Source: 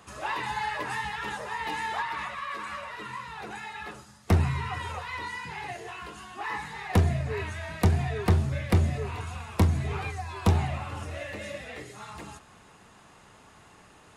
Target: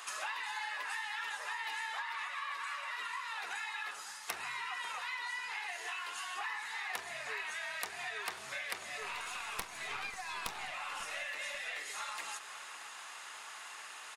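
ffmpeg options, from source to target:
-filter_complex "[0:a]highpass=1.3k,asettb=1/sr,asplit=3[a][b][c];[a]atrim=end=9.014[d];[b]atrim=start=9.01:end=10.72,asetpts=PTS-STARTPTS,afade=t=in:d=0.004:c=qsin,afade=t=out:st=1.706:d=0.004:c=qsin,aeval=exprs='0.133*(cos(1*acos(clip(val(0)/0.133,-1,1)))-cos(1*PI/2))+0.0188*(cos(6*acos(clip(val(0)/0.133,-1,1)))-cos(6*PI/2))':c=same[e];[c]atrim=start=10.716[f];[d][e]acrossfade=d=0.004:c1=hsin:c2=qsin[g];[g][f]acrossfade=d=0.004:c1=qsin:c2=hsin,acompressor=threshold=-49dB:ratio=6,asplit=2[h][i];[i]adelay=542,lowpass=f=2k:p=1,volume=-11.5dB,asplit=2[j][k];[k]adelay=542,lowpass=f=2k:p=1,volume=0.39,asplit=2[l][m];[m]adelay=542,lowpass=f=2k:p=1,volume=0.39,asplit=2[n][o];[o]adelay=542,lowpass=f=2k:p=1,volume=0.39[p];[j][l][n][p]amix=inputs=4:normalize=0[q];[h][q]amix=inputs=2:normalize=0,volume=10.5dB"

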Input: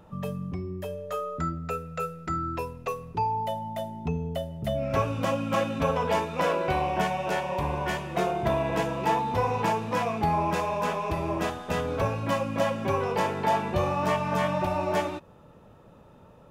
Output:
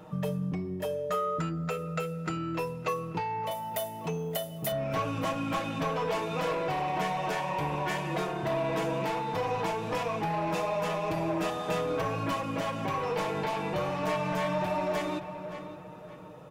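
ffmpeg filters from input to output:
-filter_complex "[0:a]highpass=f=140:p=1,asoftclip=type=tanh:threshold=-25dB,asettb=1/sr,asplit=3[a][b][c];[a]atrim=end=3.514[d];[b]atrim=start=3.51:end=4.72,asetpts=PTS-STARTPTS,afade=t=in:d=0.004:c=qsin,afade=t=out:st=1.206:d=0.004:c=qsin,aemphasis=mode=production:type=bsi[e];[c]atrim=start=4.716[f];[d][e]acrossfade=d=0.004:c1=hsin:c2=qsin[g];[g][f]acrossfade=d=0.004:c1=qsin:c2=hsin,asplit=2[h][i];[i]adelay=570,lowpass=f=3.3k:p=1,volume=-15.5dB,asplit=2[j][k];[k]adelay=570,lowpass=f=3.3k:p=1,volume=0.4,asplit=2[l][m];[m]adelay=570,lowpass=f=3.3k:p=1,volume=0.4,asplit=2[n][o];[o]adelay=570,lowpass=f=3.3k:p=1,volume=0.4[p];[h][j][l][n][p]amix=inputs=5:normalize=0,acompressor=threshold=-34dB:ratio=4,aecho=1:1:6.4:0.64,volume=4dB"

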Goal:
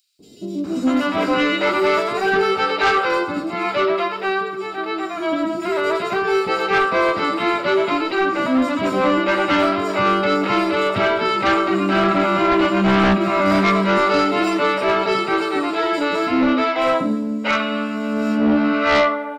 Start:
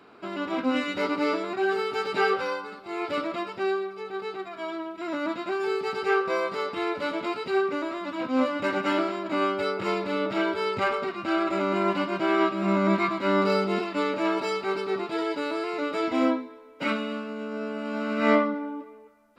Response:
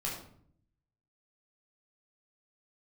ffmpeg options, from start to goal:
-filter_complex "[0:a]acrossover=split=420|5400[a][b][c];[a]adelay=190[d];[b]adelay=640[e];[d][e][c]amix=inputs=3:normalize=0,asplit=2[f][g];[1:a]atrim=start_sample=2205[h];[g][h]afir=irnorm=-1:irlink=0,volume=-14dB[i];[f][i]amix=inputs=2:normalize=0,aeval=exprs='0.355*sin(PI/2*2.82*val(0)/0.355)':c=same,volume=-2dB"

